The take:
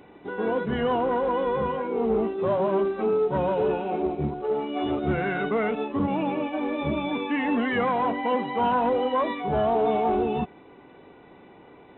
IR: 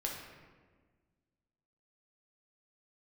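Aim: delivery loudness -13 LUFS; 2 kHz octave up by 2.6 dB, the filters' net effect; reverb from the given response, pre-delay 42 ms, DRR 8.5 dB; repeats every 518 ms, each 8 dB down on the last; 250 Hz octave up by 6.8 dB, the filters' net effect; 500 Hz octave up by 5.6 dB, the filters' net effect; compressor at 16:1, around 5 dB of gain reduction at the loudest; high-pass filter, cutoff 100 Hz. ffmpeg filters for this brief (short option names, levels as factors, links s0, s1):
-filter_complex "[0:a]highpass=100,equalizer=f=250:t=o:g=7,equalizer=f=500:t=o:g=4.5,equalizer=f=2000:t=o:g=3,acompressor=threshold=0.112:ratio=16,aecho=1:1:518|1036|1554|2072|2590:0.398|0.159|0.0637|0.0255|0.0102,asplit=2[s0][s1];[1:a]atrim=start_sample=2205,adelay=42[s2];[s1][s2]afir=irnorm=-1:irlink=0,volume=0.299[s3];[s0][s3]amix=inputs=2:normalize=0,volume=2.99"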